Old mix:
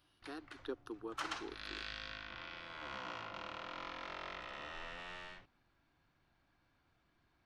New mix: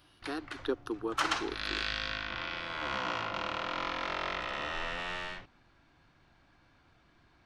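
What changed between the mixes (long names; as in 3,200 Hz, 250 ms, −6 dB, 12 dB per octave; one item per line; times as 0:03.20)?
speech +10.0 dB
background +11.0 dB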